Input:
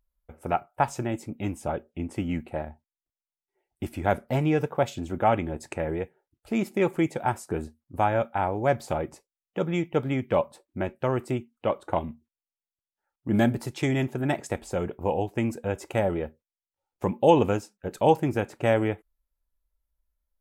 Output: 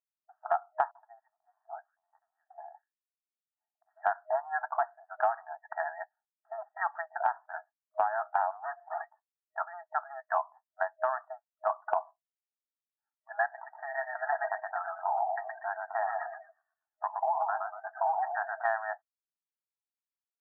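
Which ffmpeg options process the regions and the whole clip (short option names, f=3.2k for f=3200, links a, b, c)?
-filter_complex "[0:a]asettb=1/sr,asplit=3[a][b][c];[a]atrim=end=0.914[d];[b]atrim=start=0.91:end=3.97,asetpts=PTS-STARTPTS,afade=t=in:d=0.004:c=qsin,afade=t=out:st=3.056:d=0.004:c=qsin,equalizer=f=100:t=o:w=2.8:g=4,acrossover=split=420|3000[e][f][g];[f]adelay=40[h];[g]adelay=190[i];[e][h][i]amix=inputs=3:normalize=0,atrim=end_sample=134946,acompressor=threshold=-38dB:ratio=10:attack=3.2:release=140:knee=1:detection=peak[j];[c]atrim=start=3.966[k];[d][j]acrossfade=d=0.004:c1=hsin:c2=qsin[l];[l][k]acrossfade=d=0.004:c1=qsin:c2=hsin,asettb=1/sr,asplit=3[m][n][o];[m]atrim=end=8.514[p];[n]atrim=start=8.51:end=9.01,asetpts=PTS-STARTPTS,afade=t=in:d=0.004:c=qsin,afade=t=out:st=0.496:d=0.004:c=qsin,asoftclip=type=hard:threshold=-28dB,acompressor=threshold=-36dB:ratio=4:attack=3.2:release=140:knee=1:detection=peak[q];[o]atrim=start=9.006[r];[p][q]acrossfade=d=0.004:c1=hsin:c2=qsin[s];[s][r]acrossfade=d=0.004:c1=qsin:c2=hsin,asettb=1/sr,asplit=3[t][u][v];[t]atrim=end=13.464[w];[u]atrim=start=13.46:end=18.65,asetpts=PTS-STARTPTS,afade=t=in:d=0.004:c=qsin,afade=t=out:st=5.186:d=0.004:c=qsin,acompressor=threshold=-23dB:ratio=4:attack=3.2:release=140:knee=1:detection=peak,asplit=7[x][y][z][aa][ab][ac][ad];[y]adelay=119,afreqshift=-40,volume=-4dB[ae];[z]adelay=238,afreqshift=-80,volume=-11.1dB[af];[aa]adelay=357,afreqshift=-120,volume=-18.3dB[ag];[ab]adelay=476,afreqshift=-160,volume=-25.4dB[ah];[ac]adelay=595,afreqshift=-200,volume=-32.5dB[ai];[ad]adelay=714,afreqshift=-240,volume=-39.7dB[aj];[x][ae][af][ag][ah][ai][aj]amix=inputs=7:normalize=0,atrim=end_sample=228879[ak];[v]atrim=start=18.646[al];[w][ak]acrossfade=d=0.004:c1=hsin:c2=qsin[am];[am][al]acrossfade=d=0.004:c1=qsin:c2=hsin,afftfilt=real='re*between(b*sr/4096,630,1900)':imag='im*between(b*sr/4096,630,1900)':win_size=4096:overlap=0.75,afftdn=nr=19:nf=-44,acompressor=threshold=-31dB:ratio=10,volume=6.5dB"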